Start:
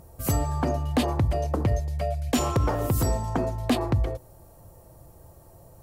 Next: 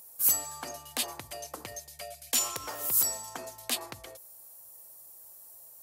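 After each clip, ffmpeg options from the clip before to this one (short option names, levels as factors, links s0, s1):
-af "aderivative,volume=2.24"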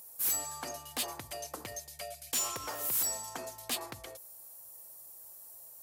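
-af "asoftclip=type=tanh:threshold=0.0473"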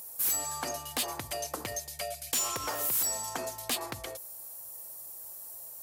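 -af "acompressor=threshold=0.0141:ratio=2,volume=2.11"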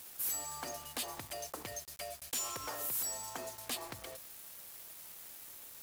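-af "acrusher=bits=6:mix=0:aa=0.000001,volume=0.422"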